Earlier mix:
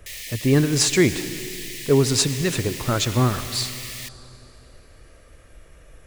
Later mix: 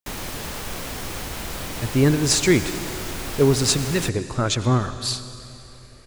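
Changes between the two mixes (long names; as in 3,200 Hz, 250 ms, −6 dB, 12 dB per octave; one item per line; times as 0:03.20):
speech: entry +1.50 s
background: remove linear-phase brick-wall high-pass 1,700 Hz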